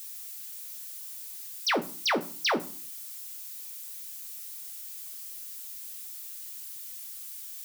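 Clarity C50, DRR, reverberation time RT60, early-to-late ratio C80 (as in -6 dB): 16.0 dB, 6.0 dB, 0.45 s, 22.0 dB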